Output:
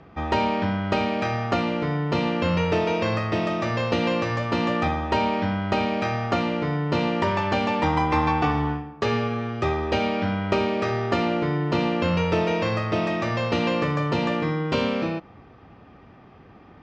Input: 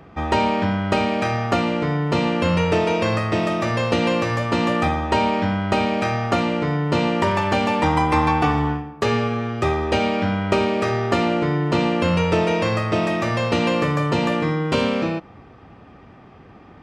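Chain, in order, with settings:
low-pass filter 6,100 Hz 24 dB per octave
level −3.5 dB

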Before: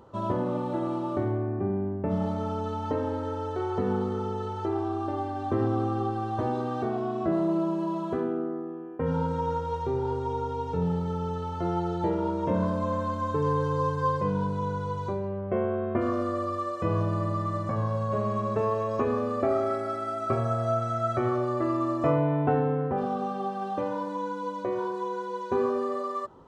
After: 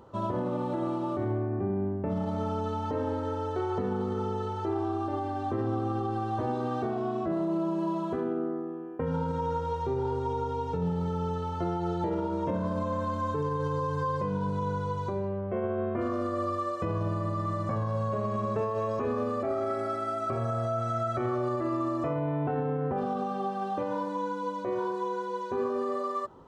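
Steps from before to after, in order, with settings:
brickwall limiter −22 dBFS, peak gain reduction 9.5 dB

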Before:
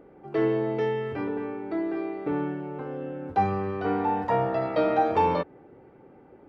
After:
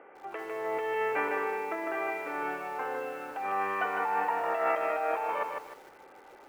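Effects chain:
Butterworth low-pass 2,900 Hz 48 dB per octave
compressor whose output falls as the input rises −30 dBFS, ratio −1
high-pass filter 900 Hz 12 dB per octave
feedback echo at a low word length 153 ms, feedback 35%, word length 10 bits, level −4.5 dB
level +6.5 dB

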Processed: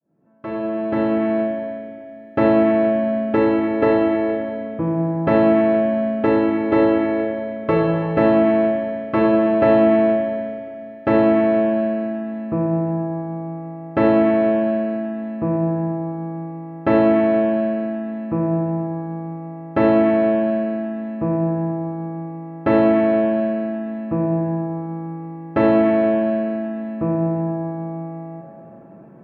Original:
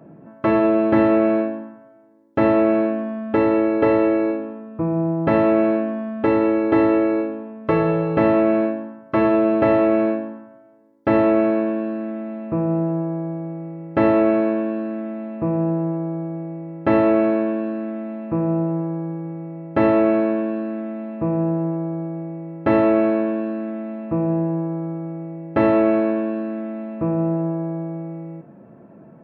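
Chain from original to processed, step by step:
fade in at the beginning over 1.79 s
four-comb reverb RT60 2.8 s, combs from 32 ms, DRR 4 dB

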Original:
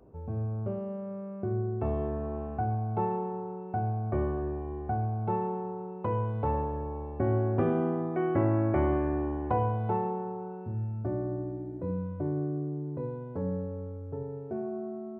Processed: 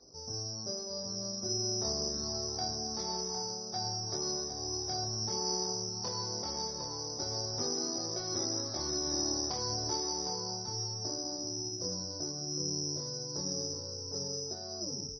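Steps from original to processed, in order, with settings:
turntable brake at the end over 0.40 s
low-pass filter 2,000 Hz 24 dB per octave
low-shelf EQ 160 Hz −10 dB
downward compressor 4 to 1, threshold −33 dBFS, peak gain reduction 8 dB
soft clipping −29.5 dBFS, distortion −20 dB
chorus effect 0.27 Hz, delay 20 ms, depth 7.1 ms
slap from a distant wall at 130 metres, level −6 dB
bad sample-rate conversion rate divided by 8×, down filtered, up zero stuff
MP3 24 kbit/s 24,000 Hz

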